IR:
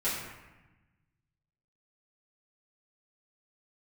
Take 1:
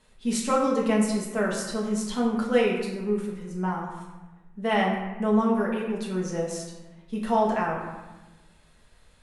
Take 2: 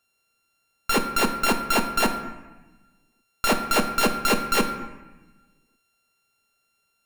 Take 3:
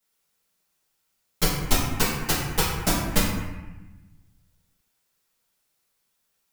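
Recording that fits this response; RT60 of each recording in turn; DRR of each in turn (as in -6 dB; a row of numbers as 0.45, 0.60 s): 3; 1.1, 1.1, 1.1 s; -4.5, 4.5, -12.5 dB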